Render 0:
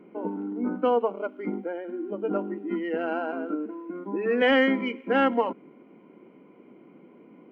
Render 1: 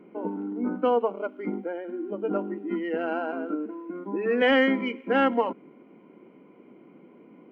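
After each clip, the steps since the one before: no audible change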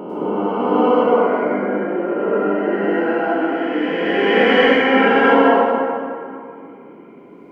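reverse spectral sustain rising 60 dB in 2.85 s; plate-style reverb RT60 2.4 s, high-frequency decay 0.6×, pre-delay 90 ms, DRR -7.5 dB; trim -1.5 dB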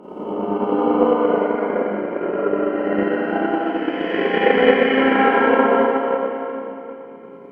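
low-pass that closes with the level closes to 2.9 kHz, closed at -9.5 dBFS; Schroeder reverb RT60 2.8 s, combs from 30 ms, DRR -8.5 dB; transient shaper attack +7 dB, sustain -3 dB; trim -12 dB

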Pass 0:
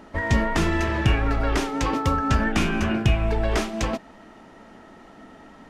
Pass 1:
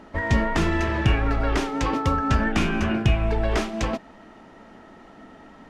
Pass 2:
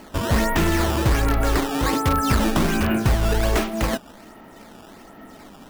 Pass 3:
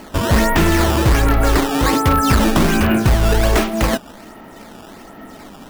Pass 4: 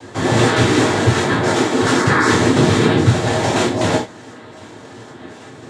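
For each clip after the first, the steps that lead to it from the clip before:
treble shelf 8 kHz -8 dB
in parallel at -7.5 dB: integer overflow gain 14.5 dB; on the sum: decimation with a swept rate 12×, swing 160% 1.3 Hz
overload inside the chain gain 14 dB; trim +6 dB
noise-vocoded speech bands 6; gated-style reverb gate 120 ms falling, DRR -4 dB; trim -4 dB

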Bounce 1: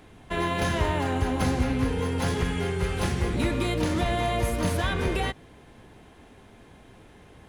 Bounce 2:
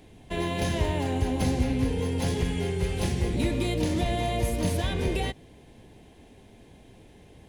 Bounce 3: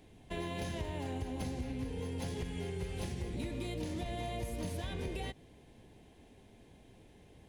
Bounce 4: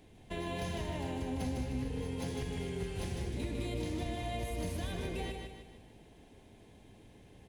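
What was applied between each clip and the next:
peaking EQ 1.3 kHz -13 dB 0.83 oct
compression, threshold -28 dBFS, peak gain reduction 9 dB; trim -7 dB
feedback delay 153 ms, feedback 45%, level -5 dB

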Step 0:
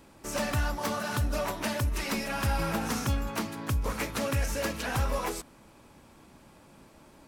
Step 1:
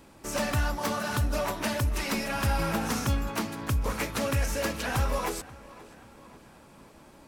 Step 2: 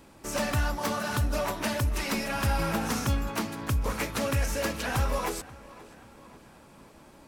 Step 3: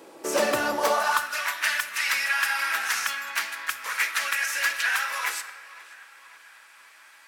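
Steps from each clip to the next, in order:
tape echo 534 ms, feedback 58%, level -17.5 dB, low-pass 3.4 kHz; trim +1.5 dB
no audible change
simulated room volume 1500 m³, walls mixed, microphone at 0.66 m; high-pass sweep 410 Hz -> 1.7 kHz, 0.74–1.37 s; trim +4.5 dB

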